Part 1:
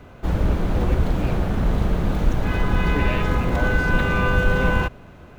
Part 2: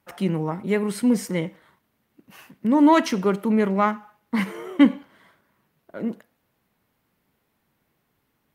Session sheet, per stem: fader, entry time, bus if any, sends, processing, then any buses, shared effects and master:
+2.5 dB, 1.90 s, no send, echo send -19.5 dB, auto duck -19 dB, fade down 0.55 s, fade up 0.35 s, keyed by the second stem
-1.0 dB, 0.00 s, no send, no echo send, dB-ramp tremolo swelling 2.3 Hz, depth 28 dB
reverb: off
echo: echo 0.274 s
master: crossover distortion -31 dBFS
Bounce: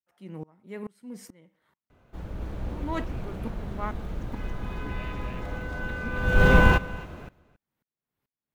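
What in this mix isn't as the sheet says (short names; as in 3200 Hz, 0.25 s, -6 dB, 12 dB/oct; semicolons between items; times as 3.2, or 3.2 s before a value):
stem 2 -1.0 dB -> -9.0 dB; master: missing crossover distortion -31 dBFS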